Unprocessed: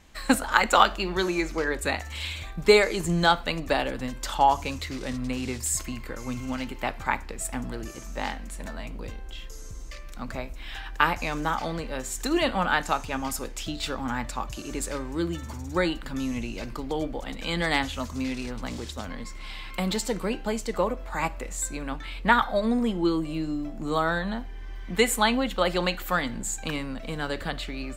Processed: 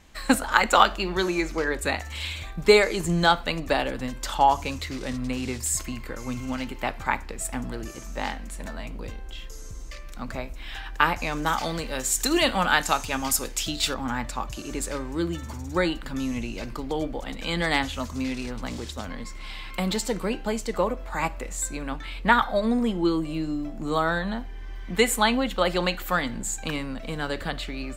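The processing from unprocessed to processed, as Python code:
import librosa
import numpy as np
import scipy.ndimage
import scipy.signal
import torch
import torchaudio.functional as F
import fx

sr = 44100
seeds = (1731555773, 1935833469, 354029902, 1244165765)

y = fx.high_shelf(x, sr, hz=2900.0, db=9.5, at=(11.46, 13.94))
y = F.gain(torch.from_numpy(y), 1.0).numpy()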